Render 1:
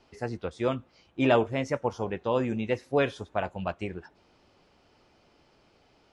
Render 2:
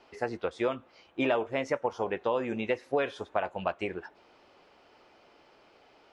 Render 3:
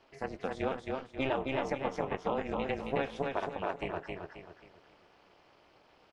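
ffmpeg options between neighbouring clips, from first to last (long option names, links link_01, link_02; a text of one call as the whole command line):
ffmpeg -i in.wav -af "bass=frequency=250:gain=-14,treble=frequency=4000:gain=-8,acompressor=threshold=-31dB:ratio=4,volume=5.5dB" out.wav
ffmpeg -i in.wav -filter_complex "[0:a]tremolo=f=270:d=0.974,asplit=2[link_01][link_02];[link_02]aecho=0:1:268|536|804|1072|1340:0.708|0.262|0.0969|0.0359|0.0133[link_03];[link_01][link_03]amix=inputs=2:normalize=0,volume=-1dB" out.wav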